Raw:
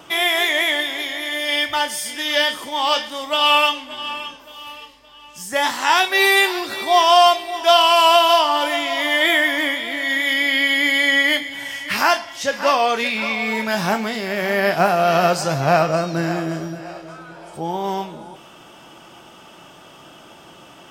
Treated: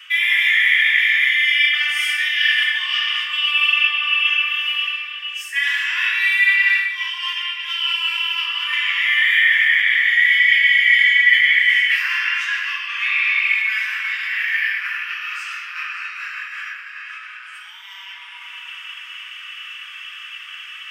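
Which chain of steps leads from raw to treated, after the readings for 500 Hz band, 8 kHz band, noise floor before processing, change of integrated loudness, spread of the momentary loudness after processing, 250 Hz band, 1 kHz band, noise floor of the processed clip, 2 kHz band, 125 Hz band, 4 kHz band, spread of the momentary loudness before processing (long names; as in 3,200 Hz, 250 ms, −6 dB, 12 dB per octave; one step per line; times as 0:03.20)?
below −40 dB, below −10 dB, −45 dBFS, +2.0 dB, 20 LU, below −40 dB, −17.0 dB, −37 dBFS, +6.0 dB, below −40 dB, 0.0 dB, 14 LU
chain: rectangular room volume 170 cubic metres, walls hard, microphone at 0.98 metres
reversed playback
downward compressor 6 to 1, threshold −21 dBFS, peak gain reduction 20.5 dB
reversed playback
Butterworth high-pass 1,100 Hz 72 dB per octave
flat-topped bell 2,300 Hz +15.5 dB 1.1 octaves
level −5 dB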